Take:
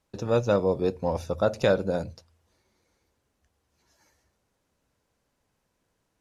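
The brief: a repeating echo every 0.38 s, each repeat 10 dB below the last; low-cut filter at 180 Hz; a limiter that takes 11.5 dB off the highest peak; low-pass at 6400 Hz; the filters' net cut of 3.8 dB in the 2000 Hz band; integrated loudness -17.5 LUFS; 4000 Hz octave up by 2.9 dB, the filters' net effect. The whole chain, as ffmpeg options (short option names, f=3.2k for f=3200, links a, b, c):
-af "highpass=180,lowpass=6.4k,equalizer=f=2k:t=o:g=-7,equalizer=f=4k:t=o:g=5.5,alimiter=limit=-22dB:level=0:latency=1,aecho=1:1:380|760|1140|1520:0.316|0.101|0.0324|0.0104,volume=16dB"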